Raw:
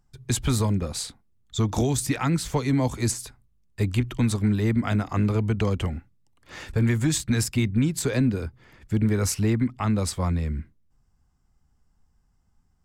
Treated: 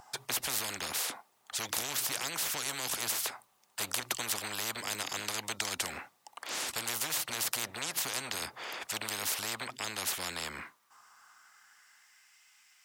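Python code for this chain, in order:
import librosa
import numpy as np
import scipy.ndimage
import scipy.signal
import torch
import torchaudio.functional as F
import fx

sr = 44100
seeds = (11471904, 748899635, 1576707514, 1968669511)

y = fx.filter_sweep_highpass(x, sr, from_hz=800.0, to_hz=2300.0, start_s=10.27, end_s=12.39, q=2.9)
y = fx.spectral_comp(y, sr, ratio=10.0)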